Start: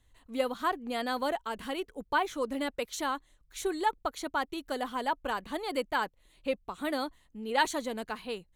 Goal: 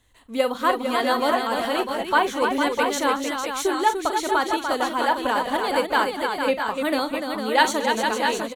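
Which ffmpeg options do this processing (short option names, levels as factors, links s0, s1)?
-af "lowshelf=f=100:g=-10.5,aecho=1:1:41|228|295|454|650|668:0.237|0.126|0.501|0.447|0.376|0.398,volume=2.66"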